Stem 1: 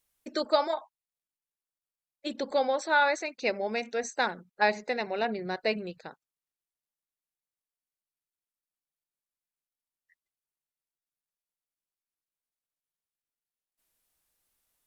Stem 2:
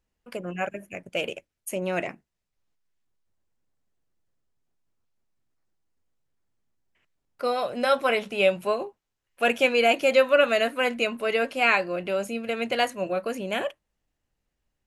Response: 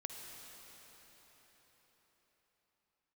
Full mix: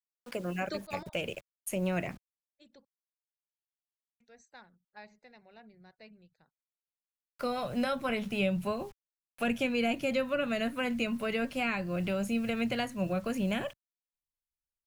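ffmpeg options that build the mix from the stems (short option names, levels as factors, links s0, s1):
-filter_complex "[0:a]adelay=350,volume=0.596,asplit=3[s0][s1][s2];[s0]atrim=end=2.85,asetpts=PTS-STARTPTS,afade=t=out:st=2.846:d=0.004:c=hsin[s3];[s1]atrim=start=2.85:end=4.2,asetpts=PTS-STARTPTS,volume=0[s4];[s2]atrim=start=4.2,asetpts=PTS-STARTPTS,afade=t=in:d=0.004:c=hsin[s5];[s3][s4][s5]concat=n=3:v=0:a=1[s6];[1:a]acrusher=bits=8:mix=0:aa=0.000001,volume=0.944,asplit=2[s7][s8];[s8]apad=whole_len=670840[s9];[s6][s9]sidechaingate=range=0.1:threshold=0.0112:ratio=16:detection=peak[s10];[s10][s7]amix=inputs=2:normalize=0,asubboost=boost=7:cutoff=140,acrossover=split=330[s11][s12];[s12]acompressor=threshold=0.02:ratio=3[s13];[s11][s13]amix=inputs=2:normalize=0"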